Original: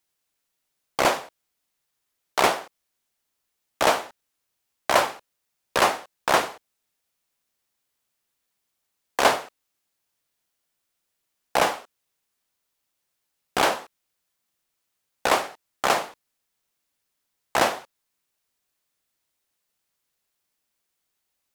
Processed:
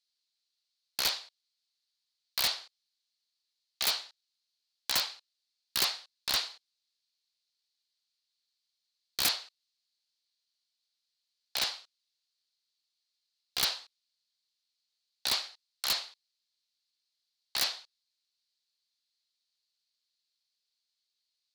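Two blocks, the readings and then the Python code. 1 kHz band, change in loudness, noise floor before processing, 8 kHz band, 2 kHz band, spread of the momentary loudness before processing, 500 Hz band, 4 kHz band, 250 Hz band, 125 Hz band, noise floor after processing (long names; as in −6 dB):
−20.5 dB, −7.5 dB, −79 dBFS, −3.5 dB, −12.5 dB, 12 LU, −24.0 dB, 0.0 dB, −20.0 dB, −14.0 dB, −85 dBFS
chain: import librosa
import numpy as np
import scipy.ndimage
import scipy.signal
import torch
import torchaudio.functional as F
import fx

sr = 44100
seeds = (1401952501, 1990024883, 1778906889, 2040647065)

y = fx.bandpass_q(x, sr, hz=4300.0, q=5.4)
y = (np.mod(10.0 ** (26.0 / 20.0) * y + 1.0, 2.0) - 1.0) / 10.0 ** (26.0 / 20.0)
y = y * 10.0 ** (7.5 / 20.0)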